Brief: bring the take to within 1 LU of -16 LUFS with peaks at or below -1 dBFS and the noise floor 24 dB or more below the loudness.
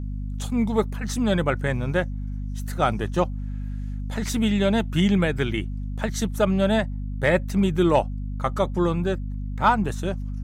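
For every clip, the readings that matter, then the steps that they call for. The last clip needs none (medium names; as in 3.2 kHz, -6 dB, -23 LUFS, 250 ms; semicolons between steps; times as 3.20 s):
hum 50 Hz; highest harmonic 250 Hz; hum level -27 dBFS; loudness -24.5 LUFS; peak level -7.0 dBFS; loudness target -16.0 LUFS
-> de-hum 50 Hz, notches 5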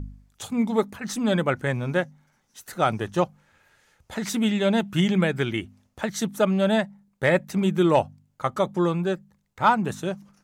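hum not found; loudness -24.5 LUFS; peak level -8.0 dBFS; loudness target -16.0 LUFS
-> trim +8.5 dB; peak limiter -1 dBFS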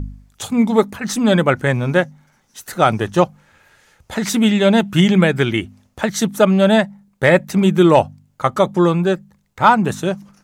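loudness -16.5 LUFS; peak level -1.0 dBFS; noise floor -60 dBFS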